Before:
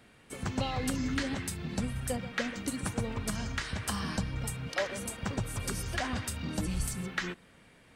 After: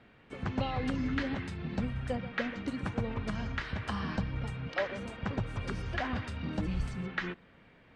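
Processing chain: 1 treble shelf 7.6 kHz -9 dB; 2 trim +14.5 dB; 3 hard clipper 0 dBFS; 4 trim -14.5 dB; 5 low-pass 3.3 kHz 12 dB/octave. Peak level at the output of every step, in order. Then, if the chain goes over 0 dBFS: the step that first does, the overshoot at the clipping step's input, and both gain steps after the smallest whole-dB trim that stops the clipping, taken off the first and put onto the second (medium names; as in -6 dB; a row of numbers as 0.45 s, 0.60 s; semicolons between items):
-19.0 dBFS, -4.5 dBFS, -4.5 dBFS, -19.0 dBFS, -19.5 dBFS; nothing clips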